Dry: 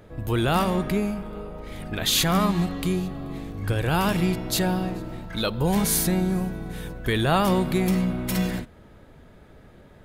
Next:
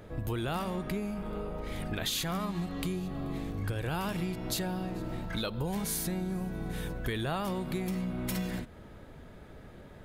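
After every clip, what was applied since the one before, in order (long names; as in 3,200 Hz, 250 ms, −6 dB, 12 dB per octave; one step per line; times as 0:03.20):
downward compressor 6 to 1, threshold −31 dBFS, peak gain reduction 13.5 dB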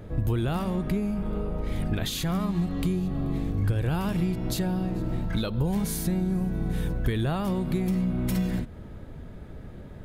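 low-shelf EQ 340 Hz +10.5 dB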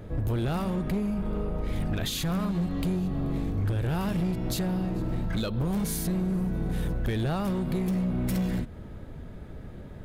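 gain into a clipping stage and back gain 23.5 dB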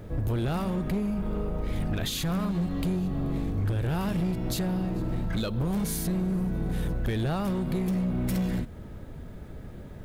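bit reduction 11 bits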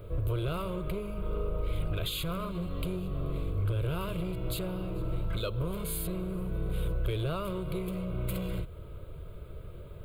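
phaser with its sweep stopped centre 1,200 Hz, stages 8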